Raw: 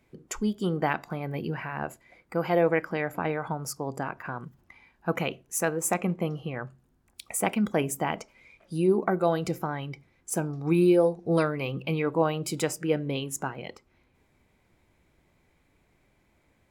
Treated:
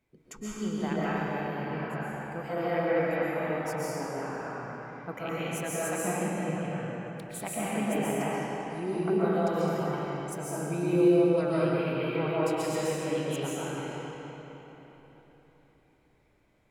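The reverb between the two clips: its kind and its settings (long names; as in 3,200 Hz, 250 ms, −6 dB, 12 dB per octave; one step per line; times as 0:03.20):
comb and all-pass reverb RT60 4 s, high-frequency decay 0.75×, pre-delay 95 ms, DRR −9.5 dB
level −11.5 dB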